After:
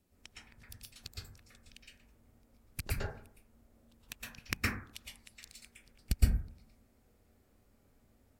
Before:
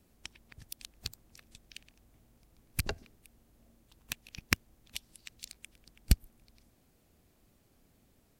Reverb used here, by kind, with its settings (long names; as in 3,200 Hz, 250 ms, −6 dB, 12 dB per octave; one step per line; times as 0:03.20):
dense smooth reverb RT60 0.55 s, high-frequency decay 0.3×, pre-delay 105 ms, DRR −6.5 dB
level −8.5 dB